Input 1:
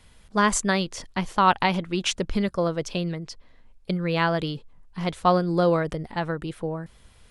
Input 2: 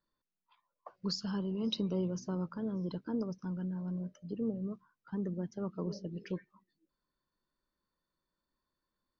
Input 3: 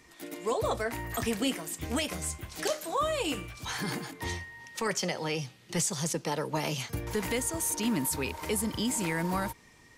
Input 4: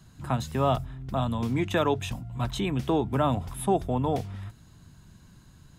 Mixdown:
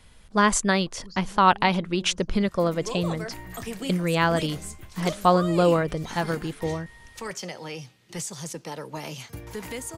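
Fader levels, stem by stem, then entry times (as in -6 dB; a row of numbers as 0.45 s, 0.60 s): +1.0 dB, -10.5 dB, -4.0 dB, mute; 0.00 s, 0.00 s, 2.40 s, mute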